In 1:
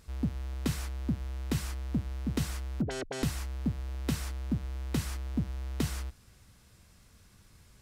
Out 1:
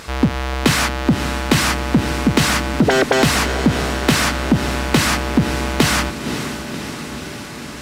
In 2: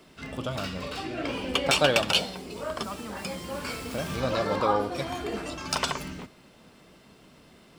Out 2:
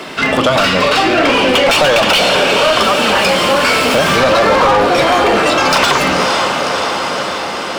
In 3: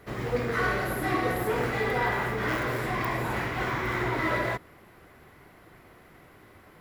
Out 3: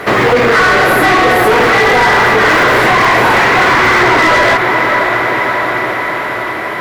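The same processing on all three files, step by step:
feedback delay with all-pass diffusion 541 ms, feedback 66%, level −13.5 dB
mid-hump overdrive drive 29 dB, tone 2,800 Hz, clips at −7 dBFS
downward compressor, threshold −18 dBFS
normalise the peak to −3 dBFS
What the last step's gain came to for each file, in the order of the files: +8.5, +9.5, +11.0 decibels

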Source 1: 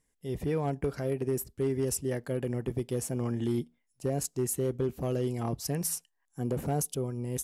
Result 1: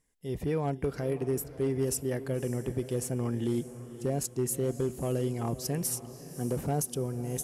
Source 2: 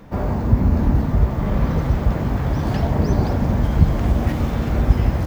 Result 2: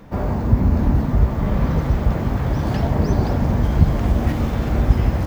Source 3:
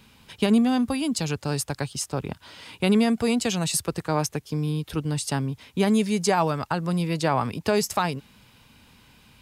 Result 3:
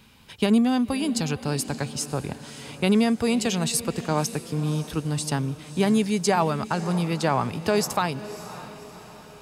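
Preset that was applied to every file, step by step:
feedback delay with all-pass diffusion 567 ms, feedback 49%, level −14 dB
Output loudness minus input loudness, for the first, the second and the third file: 0.0, 0.0, 0.0 LU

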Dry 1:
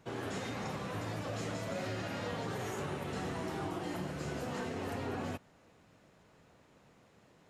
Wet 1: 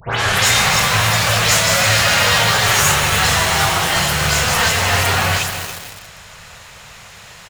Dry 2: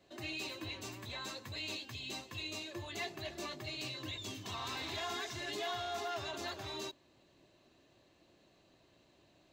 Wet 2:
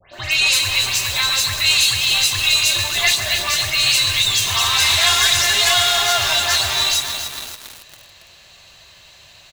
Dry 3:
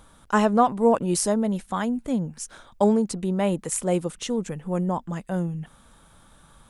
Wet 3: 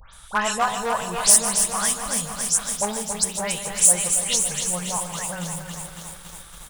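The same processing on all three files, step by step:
stylus tracing distortion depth 0.028 ms
on a send: repeating echo 151 ms, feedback 56%, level −13 dB
on the sum: dynamic equaliser 8,900 Hz, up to +6 dB, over −53 dBFS, Q 1.1
in parallel at −0.5 dB: downward compressor, threshold −33 dBFS
on the sum: hum removal 62.24 Hz, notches 18
all-pass dispersion highs, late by 139 ms, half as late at 2,800 Hz
hard clipping −10.5 dBFS
guitar amp tone stack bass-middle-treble 10-0-10
feedback echo at a low word length 278 ms, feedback 80%, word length 8 bits, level −7 dB
normalise the peak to −1.5 dBFS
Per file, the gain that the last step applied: +28.5, +23.0, +8.5 decibels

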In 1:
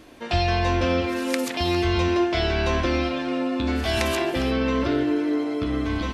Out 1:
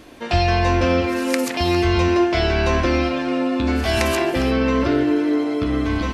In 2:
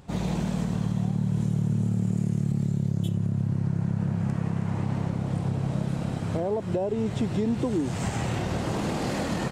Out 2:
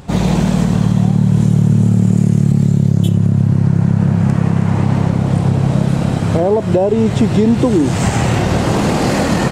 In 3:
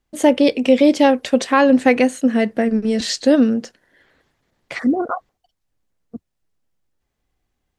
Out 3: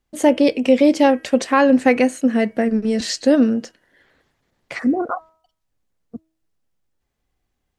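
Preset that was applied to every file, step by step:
hum removal 320.8 Hz, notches 10
dynamic equaliser 3,500 Hz, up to −5 dB, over −46 dBFS, Q 3.7
normalise the peak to −2 dBFS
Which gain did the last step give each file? +4.5, +14.0, −0.5 decibels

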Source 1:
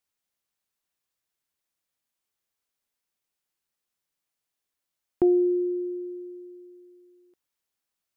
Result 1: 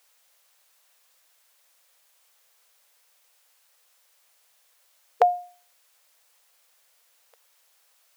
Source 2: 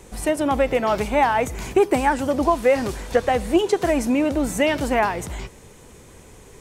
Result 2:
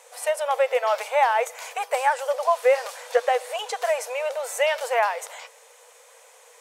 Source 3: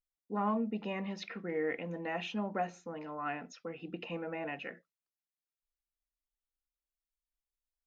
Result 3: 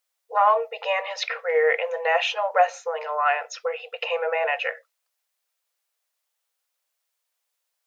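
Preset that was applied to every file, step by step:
linear-phase brick-wall high-pass 450 Hz
loudness normalisation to −24 LKFS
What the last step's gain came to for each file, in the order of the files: +21.0, −1.0, +16.5 decibels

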